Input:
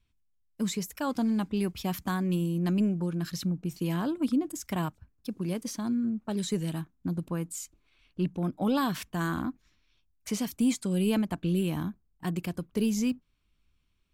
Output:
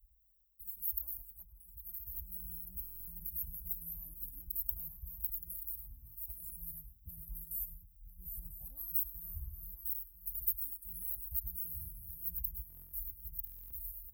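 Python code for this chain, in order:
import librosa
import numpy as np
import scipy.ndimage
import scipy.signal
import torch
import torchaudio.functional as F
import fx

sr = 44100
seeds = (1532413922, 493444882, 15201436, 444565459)

p1 = fx.reverse_delay_fb(x, sr, ms=497, feedback_pct=53, wet_db=-6.0)
p2 = scipy.signal.sosfilt(scipy.signal.cheby2(4, 70, [200.0, 6400.0], 'bandstop', fs=sr, output='sos'), p1)
p3 = fx.rider(p2, sr, range_db=4, speed_s=0.5)
p4 = p2 + (p3 * librosa.db_to_amplitude(0.0))
p5 = fx.peak_eq(p4, sr, hz=570.0, db=15.0, octaves=1.1)
p6 = fx.level_steps(p5, sr, step_db=16, at=(1.22, 2.07))
p7 = scipy.signal.sosfilt(scipy.signal.butter(2, 55.0, 'highpass', fs=sr, output='sos'), p6)
p8 = fx.high_shelf(p7, sr, hz=7200.0, db=8.0)
p9 = p8 + fx.echo_single(p8, sr, ms=104, db=-16.0, dry=0)
p10 = fx.buffer_glitch(p9, sr, at_s=(2.82, 12.68, 13.45), block=1024, repeats=10)
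p11 = fx.am_noise(p10, sr, seeds[0], hz=5.7, depth_pct=55)
y = p11 * librosa.db_to_amplitude(17.5)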